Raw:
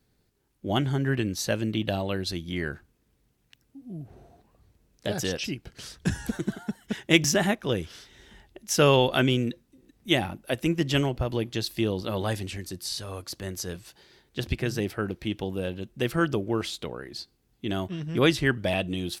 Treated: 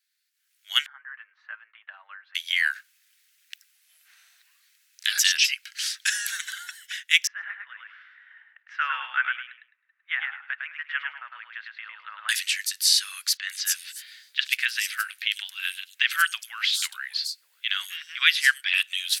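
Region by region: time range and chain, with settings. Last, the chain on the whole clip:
0.86–2.35 LPF 1100 Hz 24 dB/oct + comb 6.4 ms, depth 41%
7.27–12.29 LPF 1500 Hz 24 dB/oct + feedback echo 0.105 s, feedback 23%, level -4 dB
13.37–18.83 bell 6000 Hz -3 dB 0.31 oct + three bands offset in time mids, highs, lows 0.1/0.59 s, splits 530/5000 Hz
whole clip: steep high-pass 1600 Hz 36 dB/oct; AGC gain up to 15.5 dB; gain -1 dB

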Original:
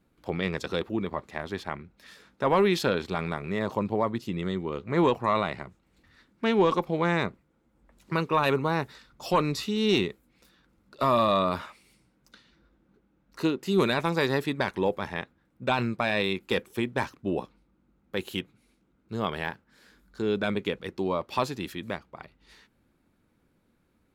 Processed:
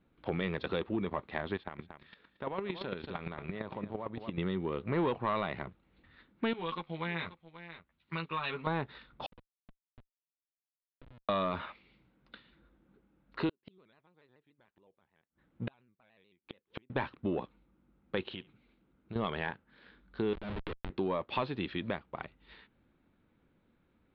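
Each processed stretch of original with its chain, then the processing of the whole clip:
1.56–4.38 echo 0.23 s -14 dB + compressor 2.5:1, threshold -33 dBFS + chopper 8.8 Hz, depth 65%, duty 10%
6.53–8.67 passive tone stack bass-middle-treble 5-5-5 + doubler 12 ms -2.5 dB + echo 0.533 s -14 dB
9.26–11.29 compressor 12:1, threshold -31 dBFS + octave resonator B, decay 0.18 s + Schmitt trigger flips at -43 dBFS
13.49–16.9 flipped gate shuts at -27 dBFS, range -39 dB + shaped vibrato square 6.9 Hz, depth 100 cents
18.33–19.16 LPF 8800 Hz + compressor, threshold -42 dBFS + flutter echo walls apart 11.9 m, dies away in 0.23 s
20.33–20.9 Schmitt trigger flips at -28 dBFS + compressor 10:1, threshold -39 dBFS
whole clip: sample leveller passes 1; compressor 2.5:1, threshold -33 dBFS; steep low-pass 3900 Hz 48 dB/oct

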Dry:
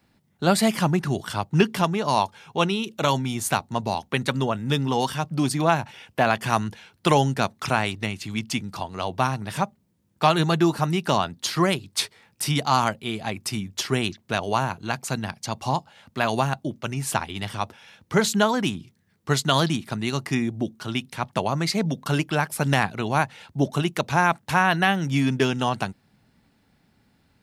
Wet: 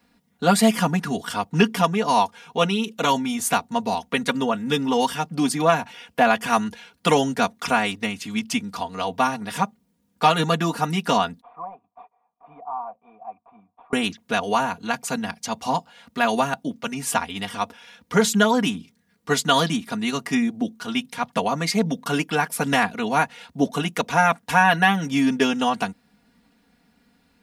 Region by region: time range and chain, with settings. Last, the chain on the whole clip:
11.41–13.93 CVSD 32 kbps + vocal tract filter a
whole clip: low shelf 140 Hz -5 dB; comb 4.2 ms, depth 94%; dynamic EQ 4200 Hz, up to -5 dB, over -45 dBFS, Q 5.7

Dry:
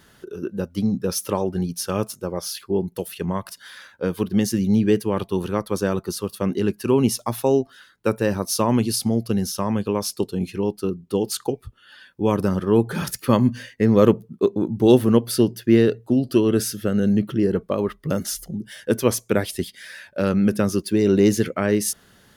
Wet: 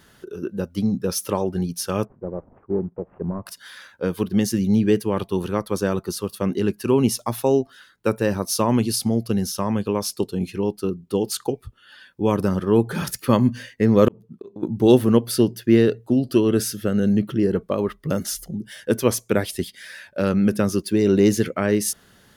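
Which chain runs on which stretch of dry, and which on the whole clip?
2.05–3.46 CVSD 16 kbps + Bessel low-pass 720 Hz, order 4
14.08–14.63 high shelf 8700 Hz -8.5 dB + auto swell 0.327 s + compressor 4:1, threshold -32 dBFS
whole clip: dry

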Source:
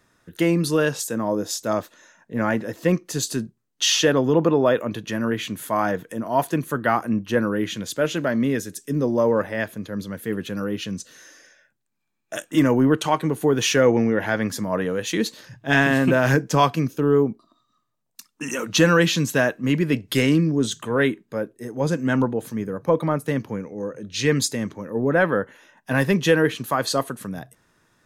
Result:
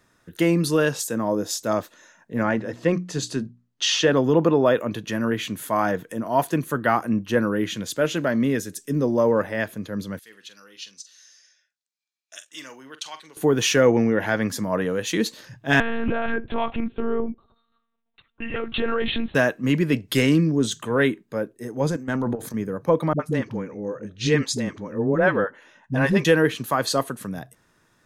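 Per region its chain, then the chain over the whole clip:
2.43–4.13 air absorption 73 m + notches 60/120/180/240/300 Hz
10.19–13.37 band-pass 4900 Hz, Q 1.6 + doubler 45 ms -12.5 dB
15.8–19.35 compressor 5:1, threshold -19 dBFS + monotone LPC vocoder at 8 kHz 230 Hz
21.9–22.54 bell 2800 Hz -8.5 dB 0.31 oct + transient shaper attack -11 dB, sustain +6 dB + level quantiser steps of 12 dB
23.13–26.25 air absorption 56 m + dispersion highs, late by 66 ms, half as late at 370 Hz
whole clip: dry

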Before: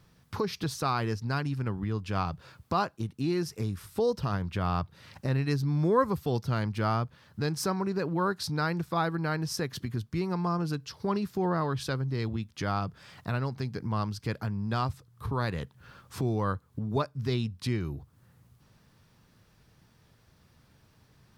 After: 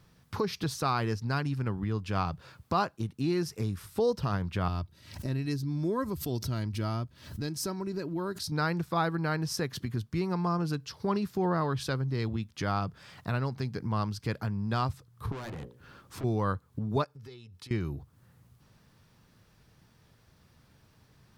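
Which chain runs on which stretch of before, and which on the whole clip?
4.68–8.52 bell 1100 Hz -10.5 dB 3 oct + comb 3.1 ms, depth 42% + backwards sustainer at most 100 dB/s
15.32–16.24 bell 320 Hz +7.5 dB 0.91 oct + notches 60/120/180/240/300/360/420/480/540/600 Hz + tube stage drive 37 dB, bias 0.35
17.04–17.71 HPF 190 Hz 6 dB/oct + compressor 12:1, threshold -44 dBFS + comb 2.3 ms, depth 51%
whole clip: dry

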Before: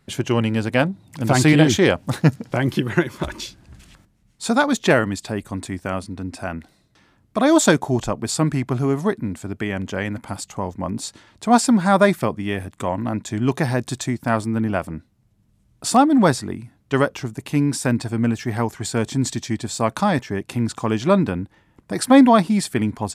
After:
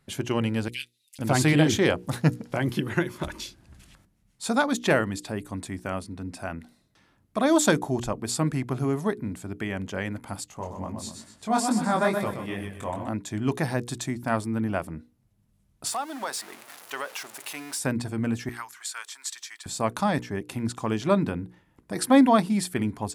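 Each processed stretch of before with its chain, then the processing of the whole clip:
0.68–1.19 steep high-pass 2600 Hz + comb 6.7 ms, depth 81%
10.49–13.08 feedback echo 0.125 s, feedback 37%, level -6.5 dB + chorus 2.3 Hz, delay 19 ms, depth 4.9 ms
15.87–17.79 zero-crossing step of -29 dBFS + HPF 770 Hz + compressor 2.5:1, threshold -23 dBFS
18.49–19.66 Chebyshev high-pass 1200 Hz, order 3 + requantised 12-bit, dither triangular
whole clip: bell 11000 Hz +6 dB 0.34 oct; notches 60/120/180/240/300/360/420/480 Hz; gain -5.5 dB

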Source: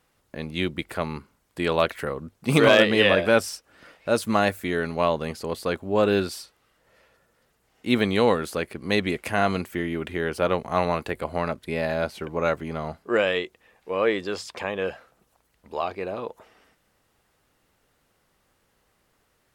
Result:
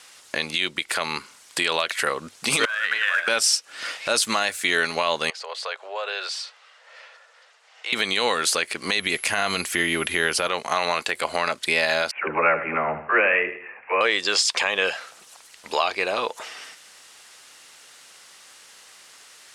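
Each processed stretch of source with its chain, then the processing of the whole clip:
2.65–3.28 negative-ratio compressor -21 dBFS + band-pass 1500 Hz, Q 6.7 + short-mantissa float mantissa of 4-bit
5.3–7.93 steep high-pass 490 Hz + compressor 2.5:1, threshold -45 dBFS + tape spacing loss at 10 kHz 22 dB
8.98–10.47 low shelf 160 Hz +10.5 dB + whine 11000 Hz -51 dBFS
12.11–14.01 steep low-pass 2600 Hz 96 dB/oct + dispersion lows, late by 71 ms, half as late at 380 Hz + feedback echo 78 ms, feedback 33%, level -13 dB
whole clip: weighting filter ITU-R 468; compressor 2:1, threshold -39 dBFS; maximiser +22.5 dB; gain -7.5 dB

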